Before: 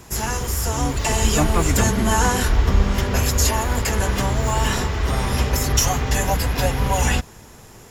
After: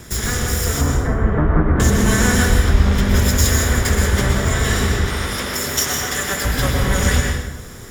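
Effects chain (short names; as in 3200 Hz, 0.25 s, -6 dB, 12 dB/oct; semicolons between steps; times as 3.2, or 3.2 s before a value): minimum comb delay 0.57 ms; 0.81–1.8 LPF 1500 Hz 24 dB/oct; in parallel at 0 dB: compressor, threshold -29 dBFS, peak gain reduction 17 dB; 5.05–6.45 on the sum: HPF 480 Hz 6 dB/oct; plate-style reverb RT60 1 s, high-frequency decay 0.7×, pre-delay 0.1 s, DRR 1 dB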